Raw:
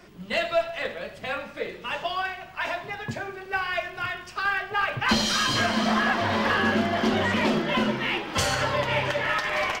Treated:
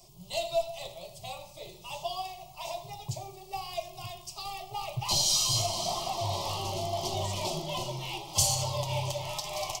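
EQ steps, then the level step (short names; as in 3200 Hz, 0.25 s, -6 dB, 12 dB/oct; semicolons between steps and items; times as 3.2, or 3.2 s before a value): tone controls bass +8 dB, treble +13 dB; fixed phaser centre 320 Hz, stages 8; fixed phaser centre 660 Hz, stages 4; -4.0 dB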